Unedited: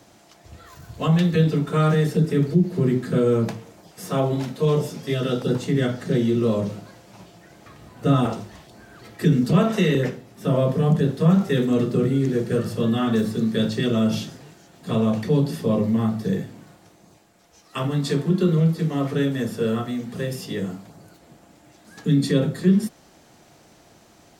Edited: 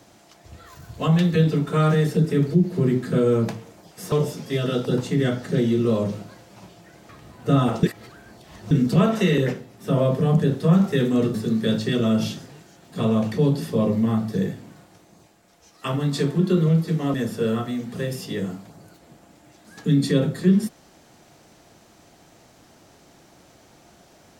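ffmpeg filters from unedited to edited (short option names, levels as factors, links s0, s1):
-filter_complex "[0:a]asplit=6[s0][s1][s2][s3][s4][s5];[s0]atrim=end=4.122[s6];[s1]atrim=start=4.688:end=8.402[s7];[s2]atrim=start=8.398:end=9.282,asetpts=PTS-STARTPTS,areverse[s8];[s3]atrim=start=9.278:end=11.912[s9];[s4]atrim=start=13.248:end=19.052[s10];[s5]atrim=start=19.338[s11];[s6][s7]acrossfade=d=0.004:c1=hsin:c2=hsin[s12];[s12][s8]acrossfade=d=0.004:c1=hsin:c2=hsin[s13];[s13][s9]acrossfade=d=0.004:c1=hsin:c2=hsin[s14];[s14][s10]acrossfade=d=0.004:c1=hsin:c2=hsin[s15];[s15][s11]acrossfade=d=0.004:c1=hsin:c2=hsin"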